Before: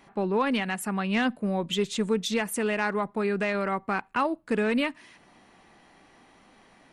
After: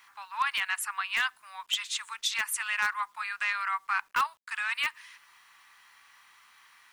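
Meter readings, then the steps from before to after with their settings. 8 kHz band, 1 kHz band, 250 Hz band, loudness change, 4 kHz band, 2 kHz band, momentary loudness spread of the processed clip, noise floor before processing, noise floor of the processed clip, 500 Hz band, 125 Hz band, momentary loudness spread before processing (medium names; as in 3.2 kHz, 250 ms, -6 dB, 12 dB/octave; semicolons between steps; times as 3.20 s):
+2.5 dB, -1.5 dB, under -35 dB, -2.5 dB, +2.5 dB, +2.5 dB, 6 LU, -58 dBFS, -63 dBFS, -32.5 dB, under -30 dB, 4 LU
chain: steep high-pass 1 kHz 48 dB/octave; in parallel at -9.5 dB: integer overflow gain 19.5 dB; on the sum: bit crusher 11-bit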